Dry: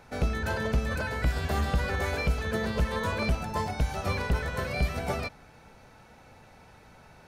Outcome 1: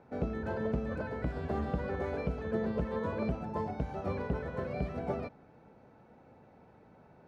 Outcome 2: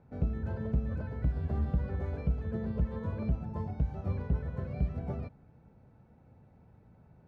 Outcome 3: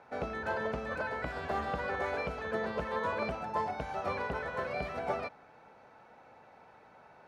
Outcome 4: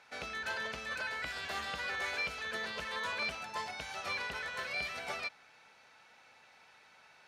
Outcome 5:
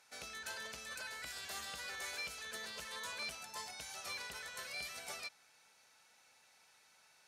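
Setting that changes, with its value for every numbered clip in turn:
band-pass, frequency: 310, 120, 800, 3000, 7900 Hz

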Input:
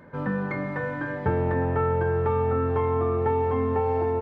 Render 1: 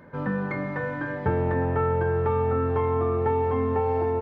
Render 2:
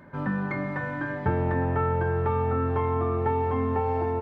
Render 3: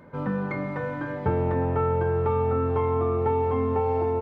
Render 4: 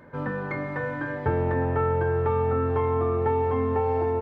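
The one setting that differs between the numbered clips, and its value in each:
notch, frequency: 7700, 480, 1700, 190 Hz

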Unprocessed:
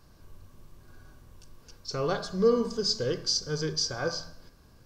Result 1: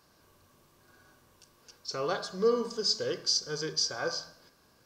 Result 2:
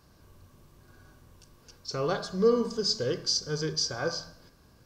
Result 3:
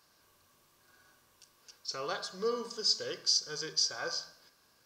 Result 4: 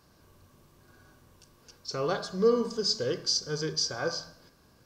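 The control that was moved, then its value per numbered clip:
HPF, cutoff: 450, 62, 1400, 160 Hz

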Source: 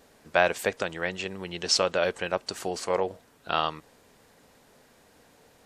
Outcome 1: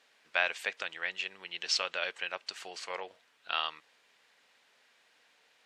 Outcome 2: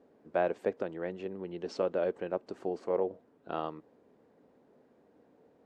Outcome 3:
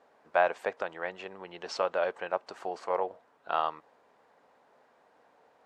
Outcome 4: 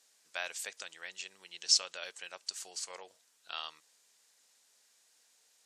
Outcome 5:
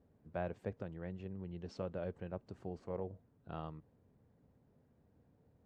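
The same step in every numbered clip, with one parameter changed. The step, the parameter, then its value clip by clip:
band-pass, frequency: 2700, 330, 870, 6900, 100 Hz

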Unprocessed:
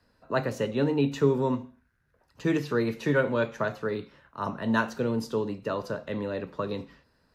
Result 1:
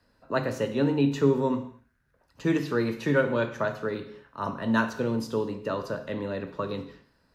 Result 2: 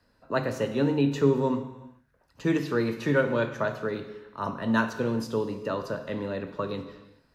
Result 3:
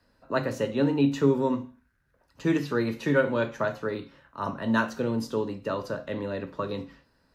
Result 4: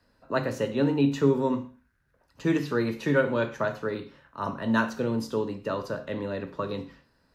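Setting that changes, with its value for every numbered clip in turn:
non-linear reverb, gate: 260, 460, 90, 150 ms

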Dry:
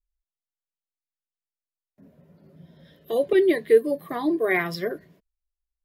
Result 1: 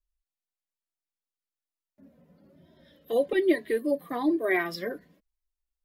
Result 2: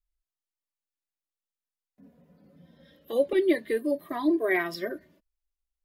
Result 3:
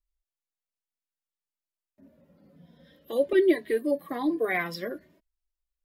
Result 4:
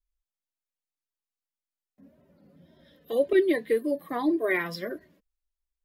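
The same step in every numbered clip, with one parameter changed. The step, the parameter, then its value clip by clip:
flange, rate: 1.1, 0.23, 0.56, 1.8 Hz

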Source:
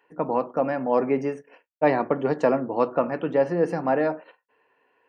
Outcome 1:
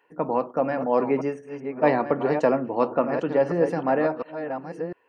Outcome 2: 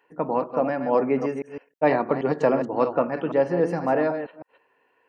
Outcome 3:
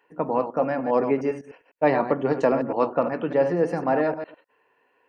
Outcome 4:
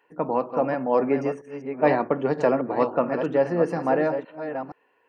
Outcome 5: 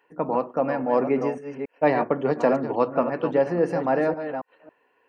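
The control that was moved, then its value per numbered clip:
reverse delay, time: 0.704, 0.158, 0.101, 0.472, 0.276 s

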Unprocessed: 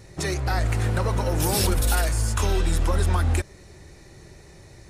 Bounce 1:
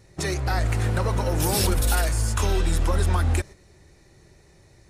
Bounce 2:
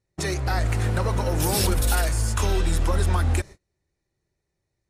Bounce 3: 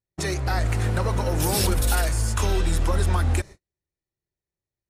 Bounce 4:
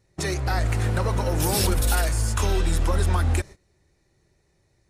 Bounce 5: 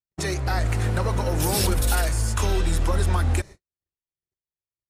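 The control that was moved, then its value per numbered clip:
gate, range: -7, -32, -45, -19, -59 dB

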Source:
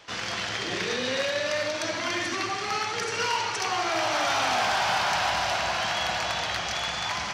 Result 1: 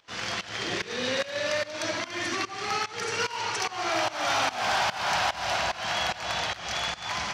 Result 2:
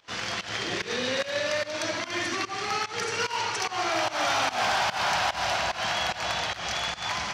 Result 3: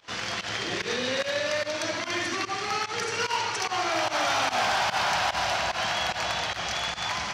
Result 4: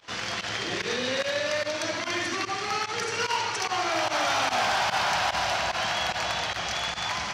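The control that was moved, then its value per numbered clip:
pump, release: 299, 173, 89, 60 ms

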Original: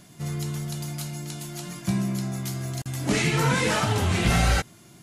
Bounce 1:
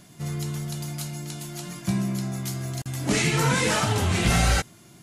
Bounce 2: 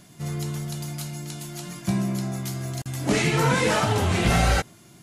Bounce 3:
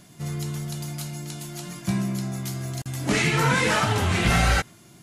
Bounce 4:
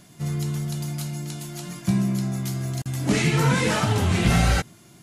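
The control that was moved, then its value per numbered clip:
dynamic EQ, frequency: 8000, 580, 1600, 170 Hz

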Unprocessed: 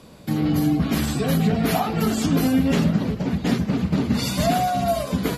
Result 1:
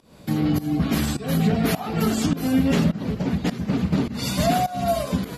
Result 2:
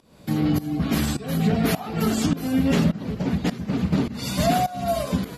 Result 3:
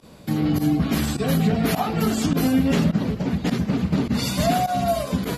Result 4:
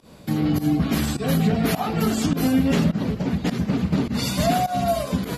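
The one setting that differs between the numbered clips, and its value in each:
pump, release: 298, 456, 65, 126 ms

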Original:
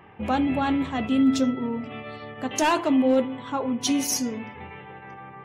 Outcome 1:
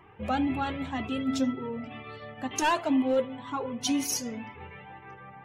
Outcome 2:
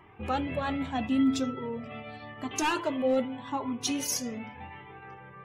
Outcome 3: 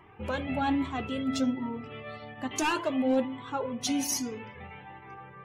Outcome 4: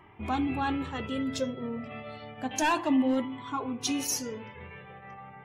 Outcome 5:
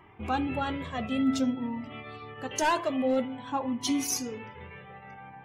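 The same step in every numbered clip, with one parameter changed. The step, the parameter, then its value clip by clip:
cascading flanger, rate: 2, 0.83, 1.2, 0.31, 0.52 Hz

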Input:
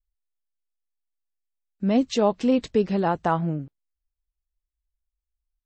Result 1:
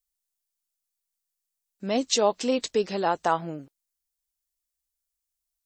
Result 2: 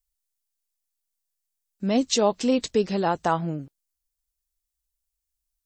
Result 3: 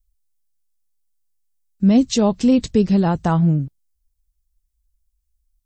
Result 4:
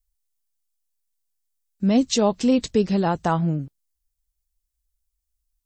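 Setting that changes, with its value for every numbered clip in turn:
tone controls, bass: -15, -4, +14, +5 dB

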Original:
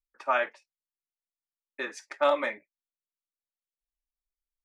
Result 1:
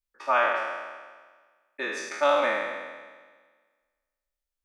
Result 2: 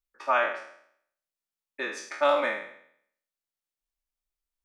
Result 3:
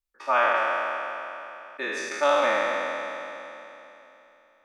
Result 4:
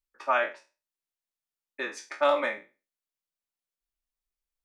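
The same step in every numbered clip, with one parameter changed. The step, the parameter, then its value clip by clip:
spectral trails, RT60: 1.51, 0.65, 3.21, 0.31 s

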